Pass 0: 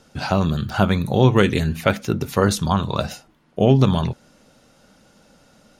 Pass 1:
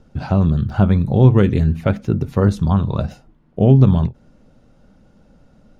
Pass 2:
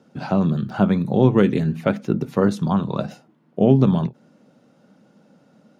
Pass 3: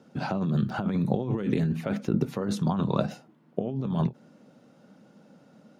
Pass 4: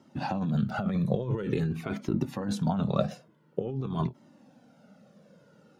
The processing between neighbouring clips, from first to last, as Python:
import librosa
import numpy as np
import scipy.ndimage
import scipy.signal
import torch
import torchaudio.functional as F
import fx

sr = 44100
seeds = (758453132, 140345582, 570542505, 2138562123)

y1 = fx.tilt_eq(x, sr, slope=-3.5)
y1 = fx.end_taper(y1, sr, db_per_s=340.0)
y1 = F.gain(torch.from_numpy(y1), -4.5).numpy()
y2 = scipy.signal.sosfilt(scipy.signal.butter(4, 160.0, 'highpass', fs=sr, output='sos'), y1)
y3 = fx.over_compress(y2, sr, threshold_db=-22.0, ratio=-1.0)
y3 = F.gain(torch.from_numpy(y3), -4.5).numpy()
y4 = fx.comb_cascade(y3, sr, direction='falling', hz=0.48)
y4 = F.gain(torch.from_numpy(y4), 3.0).numpy()